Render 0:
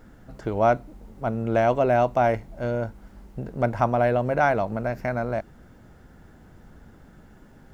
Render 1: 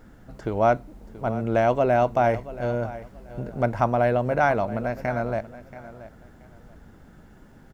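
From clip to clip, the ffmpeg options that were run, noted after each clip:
-af "aecho=1:1:680|1360:0.158|0.0365"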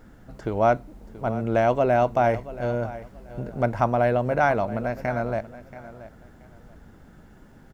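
-af anull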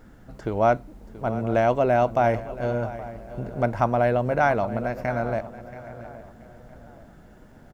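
-filter_complex "[0:a]asplit=2[s0][s1];[s1]adelay=821,lowpass=f=2000:p=1,volume=0.141,asplit=2[s2][s3];[s3]adelay=821,lowpass=f=2000:p=1,volume=0.42,asplit=2[s4][s5];[s5]adelay=821,lowpass=f=2000:p=1,volume=0.42,asplit=2[s6][s7];[s7]adelay=821,lowpass=f=2000:p=1,volume=0.42[s8];[s0][s2][s4][s6][s8]amix=inputs=5:normalize=0"

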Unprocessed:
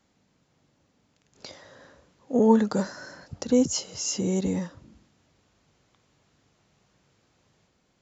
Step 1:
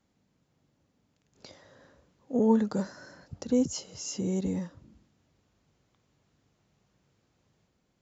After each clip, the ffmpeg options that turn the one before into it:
-af "lowshelf=f=430:g=5.5,volume=0.398"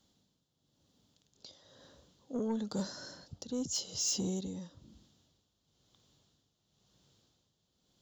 -af "tremolo=f=0.99:d=0.71,highshelf=f=2800:t=q:w=3:g=6.5,asoftclip=type=tanh:threshold=0.0473"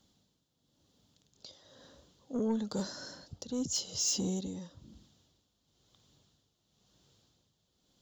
-af "aphaser=in_gain=1:out_gain=1:delay=4.4:decay=0.21:speed=0.81:type=triangular,volume=1.19"

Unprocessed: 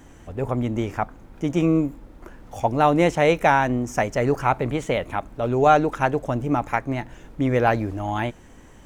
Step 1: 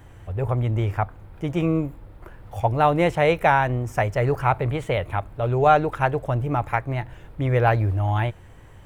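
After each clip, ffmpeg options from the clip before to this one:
-af "equalizer=f=100:t=o:w=0.67:g=11,equalizer=f=250:t=o:w=0.67:g=-10,equalizer=f=6300:t=o:w=0.67:g=-11"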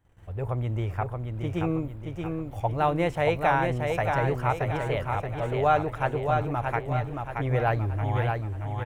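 -af "aecho=1:1:626|1252|1878|2504|3130|3756:0.596|0.268|0.121|0.0543|0.0244|0.011,agate=range=0.126:threshold=0.00708:ratio=16:detection=peak,volume=0.501"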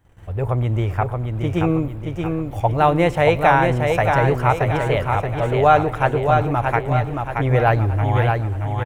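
-af "aecho=1:1:113|226|339|452:0.075|0.0412|0.0227|0.0125,volume=2.66"

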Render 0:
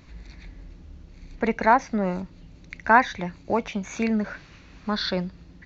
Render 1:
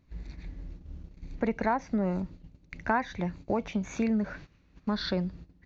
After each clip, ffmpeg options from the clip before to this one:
-af "agate=range=0.178:threshold=0.00631:ratio=16:detection=peak,tiltshelf=f=650:g=4,acompressor=threshold=0.0631:ratio=2.5,volume=0.794"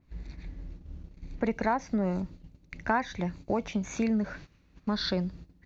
-af "adynamicequalizer=threshold=0.00398:dfrequency=4000:dqfactor=0.7:tfrequency=4000:tqfactor=0.7:attack=5:release=100:ratio=0.375:range=3:mode=boostabove:tftype=highshelf"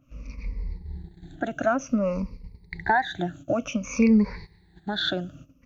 -af "afftfilt=real='re*pow(10,22/40*sin(2*PI*(0.88*log(max(b,1)*sr/1024/100)/log(2)-(-0.55)*(pts-256)/sr)))':imag='im*pow(10,22/40*sin(2*PI*(0.88*log(max(b,1)*sr/1024/100)/log(2)-(-0.55)*(pts-256)/sr)))':win_size=1024:overlap=0.75"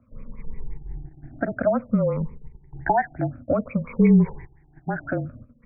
-af "asuperstop=centerf=2800:order=4:qfactor=4.1,afreqshift=-30,afftfilt=real='re*lt(b*sr/1024,830*pow(2800/830,0.5+0.5*sin(2*PI*5.7*pts/sr)))':imag='im*lt(b*sr/1024,830*pow(2800/830,0.5+0.5*sin(2*PI*5.7*pts/sr)))':win_size=1024:overlap=0.75,volume=1.41"

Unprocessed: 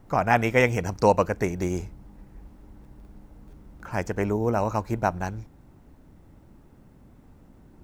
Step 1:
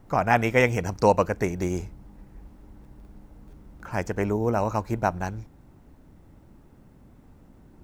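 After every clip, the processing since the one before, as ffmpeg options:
-af anull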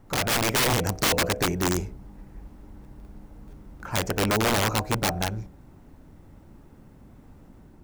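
-af "bandreject=f=62.89:t=h:w=4,bandreject=f=125.78:t=h:w=4,bandreject=f=188.67:t=h:w=4,bandreject=f=251.56:t=h:w=4,bandreject=f=314.45:t=h:w=4,bandreject=f=377.34:t=h:w=4,bandreject=f=440.23:t=h:w=4,bandreject=f=503.12:t=h:w=4,bandreject=f=566.01:t=h:w=4,bandreject=f=628.9:t=h:w=4,bandreject=f=691.79:t=h:w=4,bandreject=f=754.68:t=h:w=4,aeval=exprs='(mod(9.44*val(0)+1,2)-1)/9.44':c=same,dynaudnorm=f=130:g=5:m=1.41"

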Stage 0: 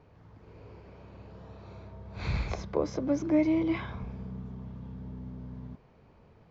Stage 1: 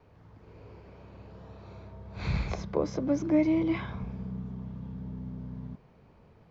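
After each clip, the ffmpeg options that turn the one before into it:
-af "adynamicequalizer=threshold=0.00398:dfrequency=170:dqfactor=2.1:tfrequency=170:tqfactor=2.1:attack=5:release=100:ratio=0.375:range=2.5:mode=boostabove:tftype=bell"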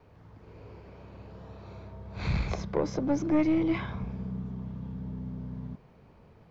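-af "aeval=exprs='(tanh(10*val(0)+0.3)-tanh(0.3))/10':c=same,volume=1.33"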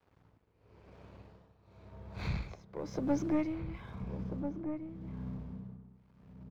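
-filter_complex "[0:a]aeval=exprs='sgn(val(0))*max(abs(val(0))-0.00158,0)':c=same,tremolo=f=0.95:d=0.86,asplit=2[s0][s1];[s1]adelay=1341,volume=0.447,highshelf=f=4000:g=-30.2[s2];[s0][s2]amix=inputs=2:normalize=0,volume=0.708"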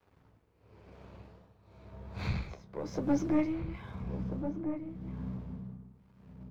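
-af "flanger=delay=9.5:depth=7.4:regen=-43:speed=1.3:shape=sinusoidal,volume=2"

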